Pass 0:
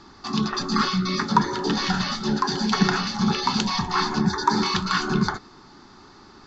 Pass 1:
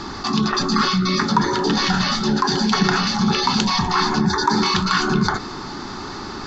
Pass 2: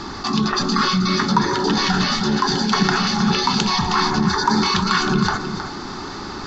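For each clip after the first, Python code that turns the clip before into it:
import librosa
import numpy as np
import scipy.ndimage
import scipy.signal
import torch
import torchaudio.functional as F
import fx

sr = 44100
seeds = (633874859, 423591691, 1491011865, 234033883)

y1 = fx.env_flatten(x, sr, amount_pct=50)
y2 = y1 + 10.0 ** (-9.5 / 20.0) * np.pad(y1, (int(315 * sr / 1000.0), 0))[:len(y1)]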